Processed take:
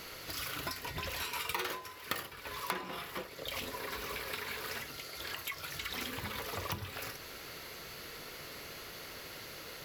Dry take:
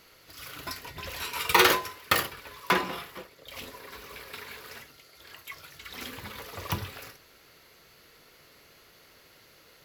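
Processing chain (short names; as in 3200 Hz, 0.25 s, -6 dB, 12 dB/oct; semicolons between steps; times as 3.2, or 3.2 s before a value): compressor 6:1, threshold -47 dBFS, peak gain reduction 28.5 dB; gain +10 dB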